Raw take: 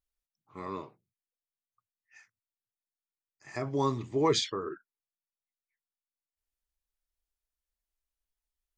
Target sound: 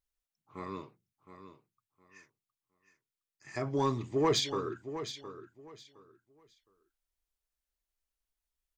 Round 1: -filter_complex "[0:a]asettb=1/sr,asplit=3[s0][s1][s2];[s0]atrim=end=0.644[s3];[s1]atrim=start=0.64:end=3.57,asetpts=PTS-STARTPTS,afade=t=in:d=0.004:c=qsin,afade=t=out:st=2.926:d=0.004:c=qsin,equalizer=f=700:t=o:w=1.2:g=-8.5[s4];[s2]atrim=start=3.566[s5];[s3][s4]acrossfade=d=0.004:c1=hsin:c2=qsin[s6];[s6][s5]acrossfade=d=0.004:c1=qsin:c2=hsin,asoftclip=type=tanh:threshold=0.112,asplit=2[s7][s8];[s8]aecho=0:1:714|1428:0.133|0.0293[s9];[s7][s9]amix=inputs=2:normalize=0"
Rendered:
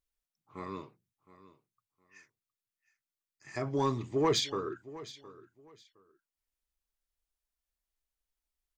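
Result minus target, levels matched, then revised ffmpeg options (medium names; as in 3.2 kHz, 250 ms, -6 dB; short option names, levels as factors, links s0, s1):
echo-to-direct -6 dB
-filter_complex "[0:a]asettb=1/sr,asplit=3[s0][s1][s2];[s0]atrim=end=0.644[s3];[s1]atrim=start=0.64:end=3.57,asetpts=PTS-STARTPTS,afade=t=in:d=0.004:c=qsin,afade=t=out:st=2.926:d=0.004:c=qsin,equalizer=f=700:t=o:w=1.2:g=-8.5[s4];[s2]atrim=start=3.566[s5];[s3][s4]acrossfade=d=0.004:c1=hsin:c2=qsin[s6];[s6][s5]acrossfade=d=0.004:c1=qsin:c2=hsin,asoftclip=type=tanh:threshold=0.112,asplit=2[s7][s8];[s8]aecho=0:1:714|1428|2142:0.266|0.0585|0.0129[s9];[s7][s9]amix=inputs=2:normalize=0"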